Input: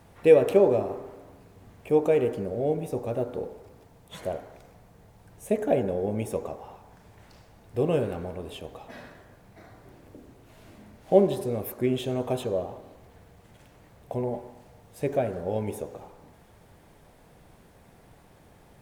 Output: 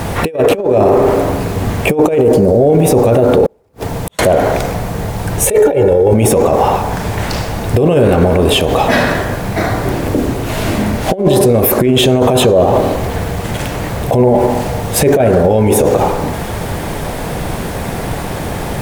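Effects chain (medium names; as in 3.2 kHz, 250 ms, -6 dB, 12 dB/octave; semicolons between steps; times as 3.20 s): 2.18–2.70 s: high-order bell 2 kHz -8.5 dB; 5.46–6.14 s: comb 2.2 ms, depth 86%; compressor with a negative ratio -29 dBFS, ratio -0.5; 3.46–4.19 s: inverted gate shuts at -37 dBFS, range -41 dB; loudness maximiser +31.5 dB; trim -1 dB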